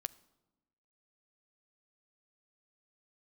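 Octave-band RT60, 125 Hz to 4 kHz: 1.3, 1.3, 1.1, 1.0, 0.75, 0.70 seconds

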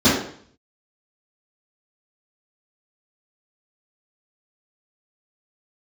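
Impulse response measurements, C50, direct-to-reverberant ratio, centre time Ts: 2.0 dB, −13.0 dB, 57 ms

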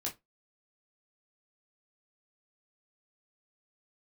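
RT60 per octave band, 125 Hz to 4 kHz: 0.20, 0.20, 0.20, 0.20, 0.15, 0.15 seconds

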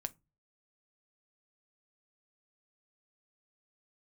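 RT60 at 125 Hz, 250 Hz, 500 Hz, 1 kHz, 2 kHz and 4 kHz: 0.50, 0.35, 0.25, 0.20, 0.20, 0.15 seconds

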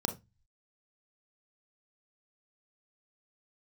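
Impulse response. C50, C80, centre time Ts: 13.5 dB, 21.0 dB, 10 ms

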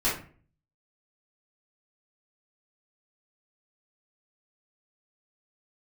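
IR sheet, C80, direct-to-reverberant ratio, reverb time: 11.5 dB, −10.0 dB, 0.45 s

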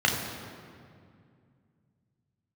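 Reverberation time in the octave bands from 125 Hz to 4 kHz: 3.6, 3.1, 2.4, 2.1, 1.9, 1.4 seconds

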